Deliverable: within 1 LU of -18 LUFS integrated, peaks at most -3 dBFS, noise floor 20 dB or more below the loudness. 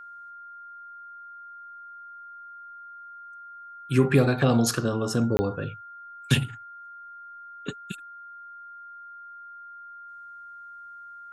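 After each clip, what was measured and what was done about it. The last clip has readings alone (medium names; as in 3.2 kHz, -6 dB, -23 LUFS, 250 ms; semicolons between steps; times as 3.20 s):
dropouts 1; longest dropout 20 ms; steady tone 1.4 kHz; tone level -41 dBFS; loudness -25.5 LUFS; peak level -8.0 dBFS; loudness target -18.0 LUFS
-> interpolate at 5.37 s, 20 ms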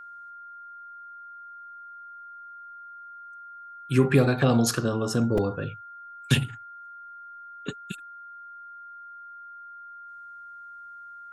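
dropouts 0; steady tone 1.4 kHz; tone level -41 dBFS
-> band-stop 1.4 kHz, Q 30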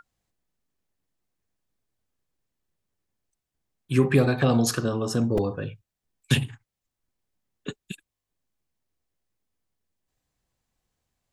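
steady tone not found; loudness -24.0 LUFS; peak level -7.5 dBFS; loudness target -18.0 LUFS
-> trim +6 dB; peak limiter -3 dBFS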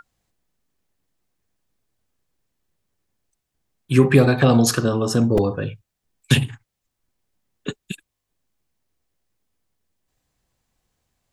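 loudness -18.0 LUFS; peak level -3.0 dBFS; noise floor -81 dBFS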